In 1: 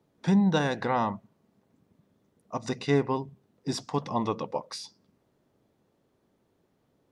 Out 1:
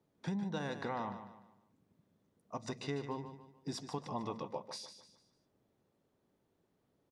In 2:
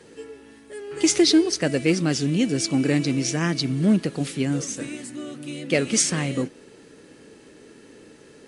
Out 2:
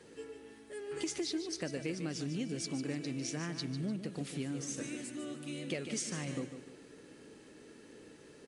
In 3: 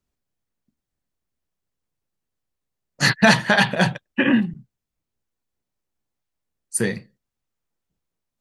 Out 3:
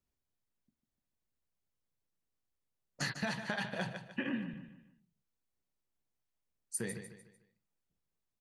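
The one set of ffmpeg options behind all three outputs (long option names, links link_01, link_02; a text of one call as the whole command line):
ffmpeg -i in.wav -filter_complex "[0:a]acompressor=threshold=-28dB:ratio=5,asplit=2[link_01][link_02];[link_02]aecho=0:1:149|298|447|596:0.316|0.117|0.0433|0.016[link_03];[link_01][link_03]amix=inputs=2:normalize=0,volume=-7.5dB" out.wav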